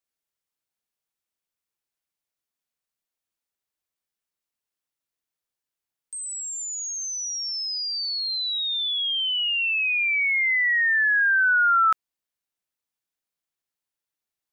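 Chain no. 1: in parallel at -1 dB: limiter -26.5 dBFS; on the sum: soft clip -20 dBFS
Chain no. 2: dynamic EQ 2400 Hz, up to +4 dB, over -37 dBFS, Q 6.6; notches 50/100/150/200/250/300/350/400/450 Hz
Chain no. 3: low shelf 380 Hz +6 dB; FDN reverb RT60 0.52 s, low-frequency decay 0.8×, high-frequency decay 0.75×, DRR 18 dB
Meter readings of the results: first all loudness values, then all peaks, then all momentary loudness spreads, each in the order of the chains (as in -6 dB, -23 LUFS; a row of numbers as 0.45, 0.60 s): -21.5, -21.0, -21.5 LUFS; -20.0, -15.0, -13.5 dBFS; 4, 11, 11 LU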